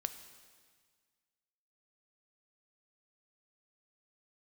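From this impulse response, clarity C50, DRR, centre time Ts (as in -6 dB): 11.0 dB, 9.0 dB, 15 ms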